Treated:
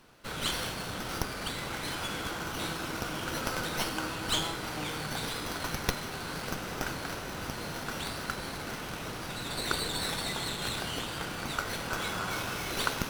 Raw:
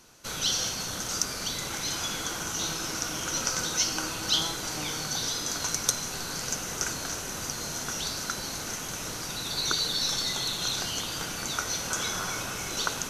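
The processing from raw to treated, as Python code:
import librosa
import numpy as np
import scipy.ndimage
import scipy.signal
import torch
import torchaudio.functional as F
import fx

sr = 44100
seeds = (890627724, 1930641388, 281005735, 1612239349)

y = fx.high_shelf(x, sr, hz=5800.0, db=fx.steps((0.0, -7.5), (12.3, 2.0)))
y = fx.running_max(y, sr, window=5)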